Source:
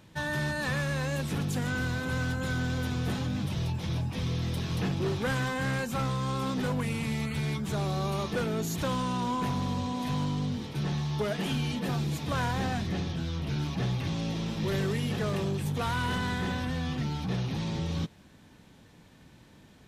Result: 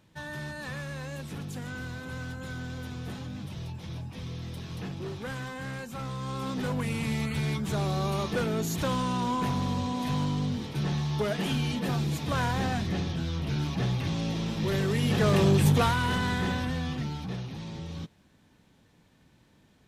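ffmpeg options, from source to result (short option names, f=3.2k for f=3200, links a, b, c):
-af "volume=10.5dB,afade=t=in:st=5.97:d=1.13:silence=0.375837,afade=t=in:st=14.87:d=0.81:silence=0.354813,afade=t=out:st=15.68:d=0.28:silence=0.398107,afade=t=out:st=16.47:d=1.04:silence=0.354813"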